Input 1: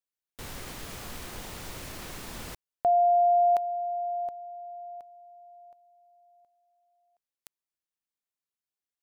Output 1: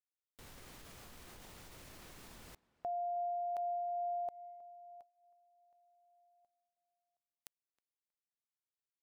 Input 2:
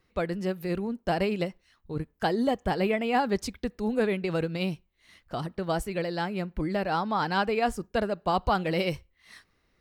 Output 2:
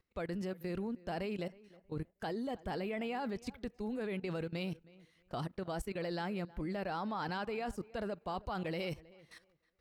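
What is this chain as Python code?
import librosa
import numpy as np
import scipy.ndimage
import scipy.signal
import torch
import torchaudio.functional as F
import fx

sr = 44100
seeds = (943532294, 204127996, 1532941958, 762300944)

p1 = fx.level_steps(x, sr, step_db=17)
p2 = p1 + fx.echo_tape(p1, sr, ms=317, feedback_pct=23, wet_db=-19.5, lp_hz=2200.0, drive_db=23.0, wow_cents=7, dry=0)
y = p2 * librosa.db_to_amplitude(-3.5)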